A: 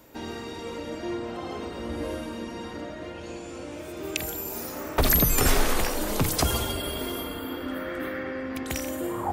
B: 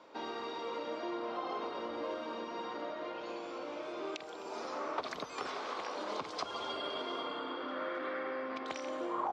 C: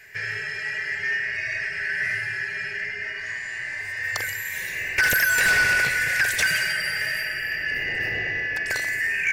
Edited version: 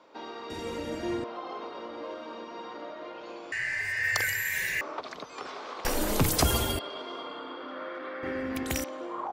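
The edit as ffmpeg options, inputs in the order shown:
-filter_complex "[0:a]asplit=3[s0][s1][s2];[1:a]asplit=5[s3][s4][s5][s6][s7];[s3]atrim=end=0.502[s8];[s0]atrim=start=0.498:end=1.242[s9];[s4]atrim=start=1.238:end=3.522[s10];[2:a]atrim=start=3.518:end=4.812[s11];[s5]atrim=start=4.808:end=5.852[s12];[s1]atrim=start=5.848:end=6.792[s13];[s6]atrim=start=6.788:end=8.232[s14];[s2]atrim=start=8.228:end=8.842[s15];[s7]atrim=start=8.838[s16];[s8][s9]acrossfade=d=0.004:c1=hsin:c2=hsin[s17];[s17][s10]acrossfade=d=0.004:c1=hsin:c2=hsin[s18];[s18][s11]acrossfade=d=0.004:c1=hsin:c2=hsin[s19];[s19][s12]acrossfade=d=0.004:c1=hsin:c2=hsin[s20];[s20][s13]acrossfade=d=0.004:c1=hsin:c2=hsin[s21];[s21][s14]acrossfade=d=0.004:c1=hsin:c2=hsin[s22];[s22][s15]acrossfade=d=0.004:c1=hsin:c2=hsin[s23];[s23][s16]acrossfade=d=0.004:c1=hsin:c2=hsin"

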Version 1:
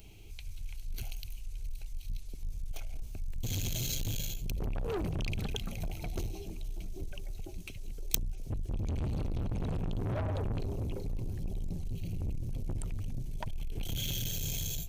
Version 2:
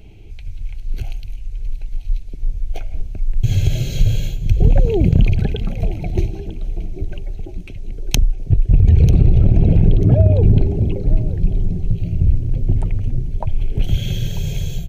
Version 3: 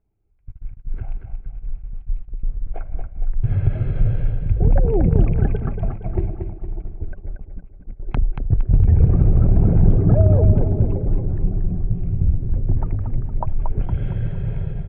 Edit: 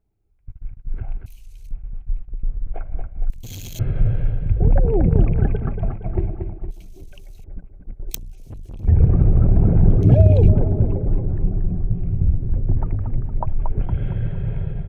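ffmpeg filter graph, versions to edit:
-filter_complex "[0:a]asplit=4[s0][s1][s2][s3];[2:a]asplit=6[s4][s5][s6][s7][s8][s9];[s4]atrim=end=1.262[s10];[s0]atrim=start=1.258:end=1.712[s11];[s5]atrim=start=1.708:end=3.302[s12];[s1]atrim=start=3.298:end=3.792[s13];[s6]atrim=start=3.788:end=6.712[s14];[s2]atrim=start=6.708:end=7.442[s15];[s7]atrim=start=7.438:end=8.13[s16];[s3]atrim=start=8.07:end=8.89[s17];[s8]atrim=start=8.83:end=10.032[s18];[1:a]atrim=start=10.028:end=10.482[s19];[s9]atrim=start=10.478[s20];[s10][s11]acrossfade=d=0.004:c1=hsin:c2=hsin[s21];[s21][s12]acrossfade=d=0.004:c1=hsin:c2=hsin[s22];[s22][s13]acrossfade=d=0.004:c1=hsin:c2=hsin[s23];[s23][s14]acrossfade=d=0.004:c1=hsin:c2=hsin[s24];[s24][s15]acrossfade=d=0.004:c1=hsin:c2=hsin[s25];[s25][s16]acrossfade=d=0.004:c1=hsin:c2=hsin[s26];[s26][s17]acrossfade=d=0.06:c1=tri:c2=tri[s27];[s27][s18]acrossfade=d=0.06:c1=tri:c2=tri[s28];[s28][s19]acrossfade=d=0.004:c1=hsin:c2=hsin[s29];[s29][s20]acrossfade=d=0.004:c1=hsin:c2=hsin"

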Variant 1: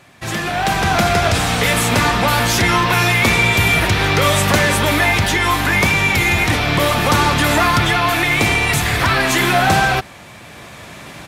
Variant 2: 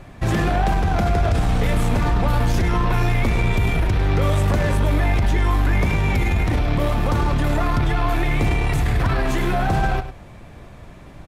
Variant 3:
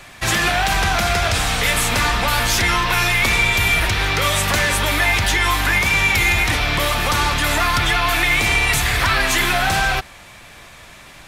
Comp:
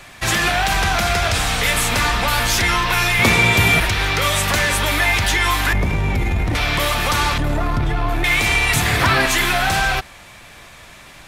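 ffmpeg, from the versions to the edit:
-filter_complex "[0:a]asplit=2[s0][s1];[1:a]asplit=2[s2][s3];[2:a]asplit=5[s4][s5][s6][s7][s8];[s4]atrim=end=3.192[s9];[s0]atrim=start=3.188:end=3.802[s10];[s5]atrim=start=3.798:end=5.732[s11];[s2]atrim=start=5.728:end=6.552[s12];[s6]atrim=start=6.548:end=7.382[s13];[s3]atrim=start=7.378:end=8.242[s14];[s7]atrim=start=8.238:end=8.762[s15];[s1]atrim=start=8.758:end=9.262[s16];[s8]atrim=start=9.258[s17];[s9][s10]acrossfade=d=0.004:c1=hsin:c2=hsin[s18];[s18][s11]acrossfade=d=0.004:c1=hsin:c2=hsin[s19];[s19][s12]acrossfade=d=0.004:c1=hsin:c2=hsin[s20];[s20][s13]acrossfade=d=0.004:c1=hsin:c2=hsin[s21];[s21][s14]acrossfade=d=0.004:c1=hsin:c2=hsin[s22];[s22][s15]acrossfade=d=0.004:c1=hsin:c2=hsin[s23];[s23][s16]acrossfade=d=0.004:c1=hsin:c2=hsin[s24];[s24][s17]acrossfade=d=0.004:c1=hsin:c2=hsin"

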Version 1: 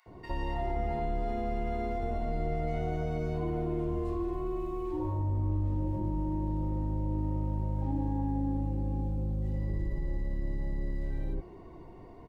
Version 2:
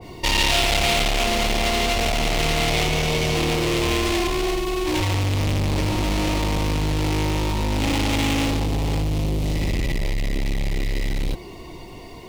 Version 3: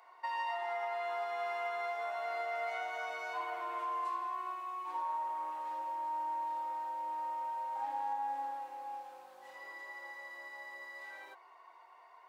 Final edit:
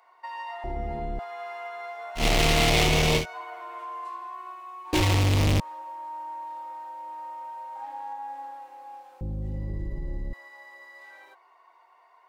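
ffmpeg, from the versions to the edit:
-filter_complex "[0:a]asplit=2[s0][s1];[1:a]asplit=2[s2][s3];[2:a]asplit=5[s4][s5][s6][s7][s8];[s4]atrim=end=0.642[s9];[s0]atrim=start=0.638:end=1.192[s10];[s5]atrim=start=1.188:end=2.25[s11];[s2]atrim=start=2.15:end=3.26[s12];[s6]atrim=start=3.16:end=4.932[s13];[s3]atrim=start=4.928:end=5.602[s14];[s7]atrim=start=5.598:end=9.212[s15];[s1]atrim=start=9.208:end=10.332[s16];[s8]atrim=start=10.328[s17];[s9][s10]acrossfade=d=0.004:c1=hsin:c2=hsin[s18];[s18][s11]acrossfade=d=0.004:c1=hsin:c2=hsin[s19];[s19][s12]acrossfade=d=0.1:c1=tri:c2=tri[s20];[s20][s13]acrossfade=d=0.1:c1=tri:c2=tri[s21];[s21][s14]acrossfade=d=0.004:c1=hsin:c2=hsin[s22];[s22][s15]acrossfade=d=0.004:c1=hsin:c2=hsin[s23];[s23][s16]acrossfade=d=0.004:c1=hsin:c2=hsin[s24];[s24][s17]acrossfade=d=0.004:c1=hsin:c2=hsin"

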